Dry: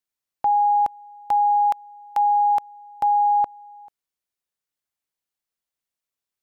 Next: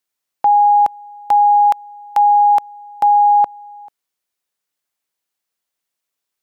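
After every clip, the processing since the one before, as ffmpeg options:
-af "lowshelf=f=140:g=-10,volume=7.5dB"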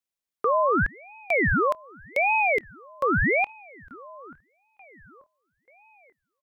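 -filter_complex "[0:a]asplit=2[a][b];[b]adelay=885,lowpass=f=1.2k:p=1,volume=-18.5dB,asplit=2[c][d];[d]adelay=885,lowpass=f=1.2k:p=1,volume=0.53,asplit=2[e][f];[f]adelay=885,lowpass=f=1.2k:p=1,volume=0.53,asplit=2[g][h];[h]adelay=885,lowpass=f=1.2k:p=1,volume=0.53[i];[a][c][e][g][i]amix=inputs=5:normalize=0,aeval=exprs='val(0)*sin(2*PI*950*n/s+950*0.8/0.85*sin(2*PI*0.85*n/s))':c=same,volume=-7.5dB"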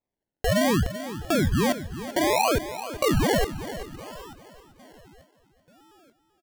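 -af "acrusher=samples=29:mix=1:aa=0.000001:lfo=1:lforange=17.4:lforate=0.64,aecho=1:1:386|772|1158|1544:0.237|0.0972|0.0399|0.0163"

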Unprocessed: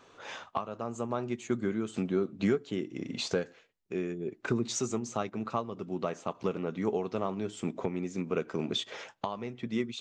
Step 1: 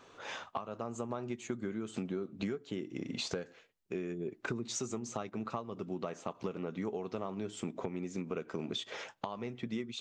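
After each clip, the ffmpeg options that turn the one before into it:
-af "acompressor=threshold=-34dB:ratio=5"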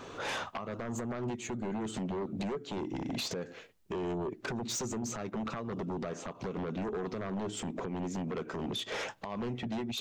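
-af "lowshelf=f=490:g=6,alimiter=level_in=7dB:limit=-24dB:level=0:latency=1:release=281,volume=-7dB,aeval=exprs='0.0282*sin(PI/2*2*val(0)/0.0282)':c=same"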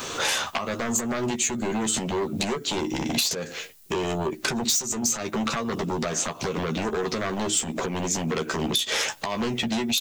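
-filter_complex "[0:a]asplit=2[a][b];[b]adelay=13,volume=-6.5dB[c];[a][c]amix=inputs=2:normalize=0,acrossover=split=310[d][e];[e]crystalizer=i=6:c=0[f];[d][f]amix=inputs=2:normalize=0,acompressor=threshold=-29dB:ratio=8,volume=8dB"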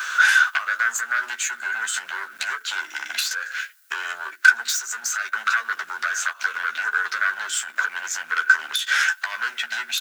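-filter_complex "[0:a]asplit=2[a][b];[b]acrusher=bits=3:dc=4:mix=0:aa=0.000001,volume=-9dB[c];[a][c]amix=inputs=2:normalize=0,highpass=f=1.5k:t=q:w=15,volume=-3.5dB"

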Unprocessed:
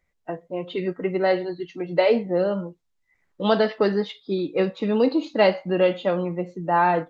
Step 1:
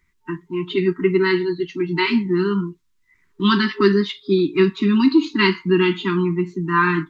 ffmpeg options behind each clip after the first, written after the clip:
-af "afftfilt=real='re*(1-between(b*sr/4096,410,900))':imag='im*(1-between(b*sr/4096,410,900))':win_size=4096:overlap=0.75,volume=8dB"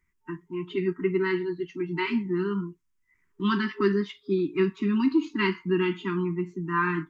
-af "equalizer=f=4k:w=2.6:g=-11,volume=-8dB"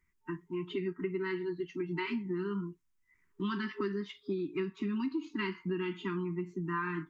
-af "acompressor=threshold=-30dB:ratio=5,volume=-2dB"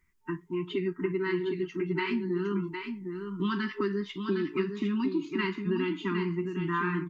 -af "aecho=1:1:759:0.473,volume=4.5dB"

